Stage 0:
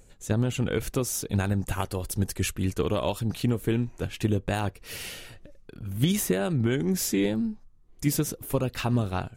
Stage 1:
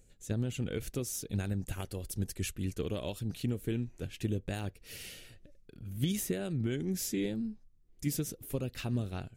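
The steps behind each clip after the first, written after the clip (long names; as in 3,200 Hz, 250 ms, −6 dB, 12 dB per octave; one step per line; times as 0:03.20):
parametric band 1,000 Hz −10.5 dB 1.1 octaves
level −7.5 dB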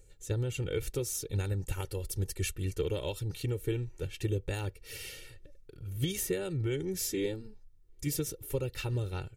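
comb filter 2.2 ms, depth 86%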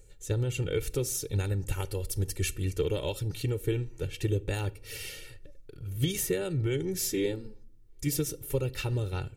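rectangular room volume 850 cubic metres, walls furnished, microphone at 0.32 metres
level +3 dB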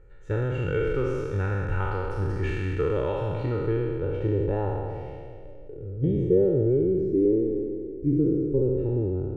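peak hold with a decay on every bin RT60 2.38 s
low-pass filter sweep 1,400 Hz → 360 Hz, 0:03.38–0:07.19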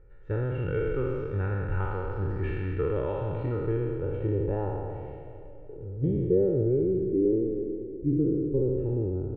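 high-frequency loss of the air 380 metres
repeating echo 372 ms, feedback 48%, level −18 dB
level −2 dB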